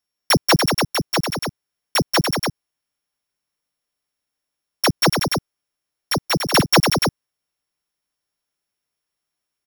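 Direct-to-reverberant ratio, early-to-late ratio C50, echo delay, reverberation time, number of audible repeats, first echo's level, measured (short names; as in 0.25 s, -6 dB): none, none, 0.184 s, none, 2, -5.0 dB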